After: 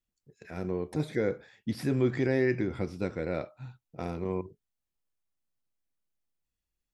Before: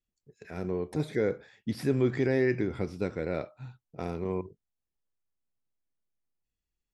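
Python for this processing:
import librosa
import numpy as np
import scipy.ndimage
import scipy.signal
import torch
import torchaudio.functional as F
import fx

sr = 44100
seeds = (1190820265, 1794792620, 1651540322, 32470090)

y = fx.notch(x, sr, hz=420.0, q=14.0)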